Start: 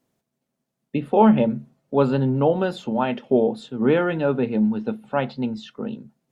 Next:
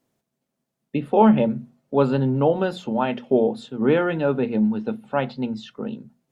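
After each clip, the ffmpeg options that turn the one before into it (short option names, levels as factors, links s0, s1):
-af "bandreject=f=60:t=h:w=6,bandreject=f=120:t=h:w=6,bandreject=f=180:t=h:w=6,bandreject=f=240:t=h:w=6"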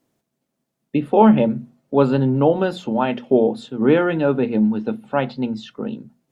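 -af "equalizer=f=310:w=4.9:g=4,volume=1.33"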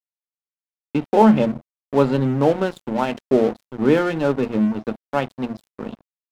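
-af "aeval=exprs='sgn(val(0))*max(abs(val(0))-0.0335,0)':c=same"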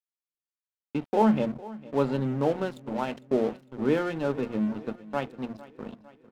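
-af "aecho=1:1:454|908|1362|1816|2270:0.112|0.0617|0.0339|0.0187|0.0103,volume=0.376"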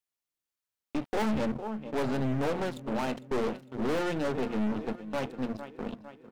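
-af "aeval=exprs='(tanh(44.7*val(0)+0.55)-tanh(0.55))/44.7':c=same,volume=2.11"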